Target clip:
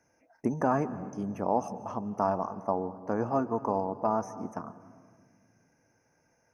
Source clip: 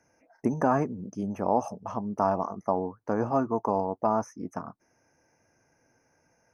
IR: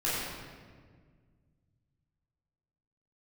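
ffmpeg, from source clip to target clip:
-filter_complex "[0:a]asplit=2[a][b];[1:a]atrim=start_sample=2205,adelay=140[c];[b][c]afir=irnorm=-1:irlink=0,volume=-24.5dB[d];[a][d]amix=inputs=2:normalize=0,volume=-2.5dB"

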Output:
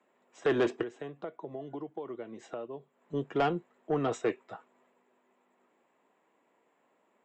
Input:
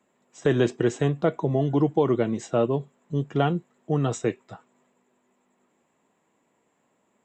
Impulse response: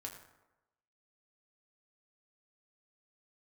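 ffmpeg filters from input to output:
-filter_complex "[0:a]acrossover=split=270 3500:gain=0.178 1 0.251[a][b][c];[a][b][c]amix=inputs=3:normalize=0,asettb=1/sr,asplit=3[d][e][f];[d]atrim=end=0.824[g];[e]atrim=start=0.82:end=3.14,asetpts=PTS-STARTPTS,afade=t=in:d=0.004:c=qsin,afade=t=out:st=2.316:d=0.004:c=qsin,acompressor=threshold=-40dB:ratio=4[h];[f]atrim=start=3.136[i];[g][h]acrossfade=d=0.004:c1=hsin:c2=qsin[j];[j][i]acrossfade=d=0.004:c1=qsin:c2=hsin,asoftclip=type=tanh:threshold=-20dB"

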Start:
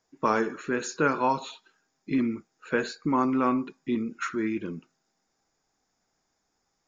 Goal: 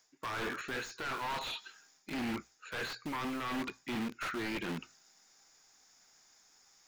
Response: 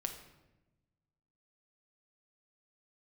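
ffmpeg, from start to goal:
-filter_complex "[0:a]aeval=exprs='0.355*(cos(1*acos(clip(val(0)/0.355,-1,1)))-cos(1*PI/2))+0.0631*(cos(3*acos(clip(val(0)/0.355,-1,1)))-cos(3*PI/2))+0.0501*(cos(4*acos(clip(val(0)/0.355,-1,1)))-cos(4*PI/2))+0.02*(cos(5*acos(clip(val(0)/0.355,-1,1)))-cos(5*PI/2))':c=same,asplit=2[a][b];[b]acrusher=bits=5:mix=0:aa=0.000001,volume=-7.5dB[c];[a][c]amix=inputs=2:normalize=0,tiltshelf=f=1.1k:g=-8.5,bandreject=f=60:t=h:w=6,bandreject=f=120:t=h:w=6,areverse,acompressor=threshold=-36dB:ratio=10,areverse,aeval=exprs='0.0447*sin(PI/2*3.16*val(0)/0.0447)':c=same,acrossover=split=3600[d][e];[e]acompressor=threshold=-47dB:ratio=4:attack=1:release=60[f];[d][f]amix=inputs=2:normalize=0,volume=-4.5dB"

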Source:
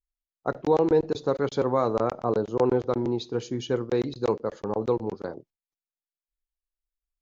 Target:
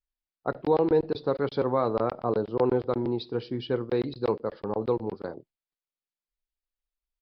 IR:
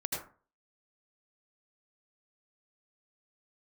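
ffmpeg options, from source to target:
-af "aresample=11025,aresample=44100,volume=-1.5dB"

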